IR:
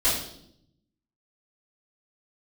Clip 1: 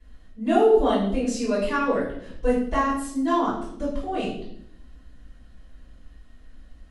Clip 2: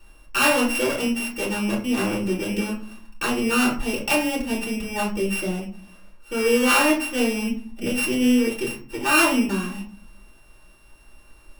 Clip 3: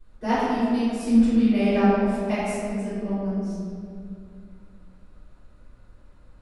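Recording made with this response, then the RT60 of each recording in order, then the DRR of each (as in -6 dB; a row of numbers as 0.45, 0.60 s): 1; 0.70, 0.50, 2.4 s; -13.5, -5.0, -17.0 dB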